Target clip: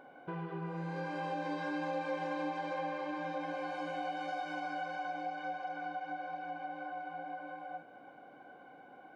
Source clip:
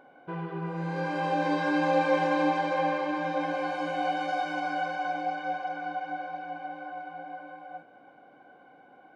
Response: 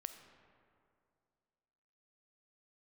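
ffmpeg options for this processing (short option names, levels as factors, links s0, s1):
-af "acompressor=threshold=0.01:ratio=2.5"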